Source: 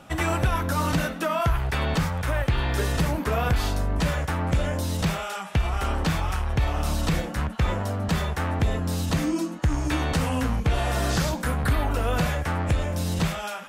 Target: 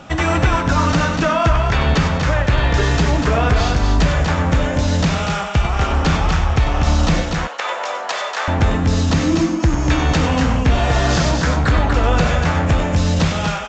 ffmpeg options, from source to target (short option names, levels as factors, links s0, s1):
-filter_complex "[0:a]asettb=1/sr,asplit=3[s0][s1][s2];[s0]atrim=end=7.234[s3];[s1]atrim=start=7.23:end=8.48,asetpts=PTS-STARTPTS,afade=t=in:d=0.004:c=qsin,afade=t=out:st=1.246:d=0.004:c=qsin,highpass=f=560:w=0.5412,highpass=f=560:w=1.3066[s4];[s2]atrim=start=8.476[s5];[s3][s4]acrossfade=d=0.004:c1=hsin:c2=qsin[s6];[s6][s5]acrossfade=d=0.004:c1=qsin:c2=hsin,asplit=2[s7][s8];[s8]alimiter=limit=0.112:level=0:latency=1:release=419,volume=0.794[s9];[s7][s9]amix=inputs=2:normalize=0,aecho=1:1:96.21|242:0.316|0.562,volume=1.58" -ar 16000 -c:a pcm_mulaw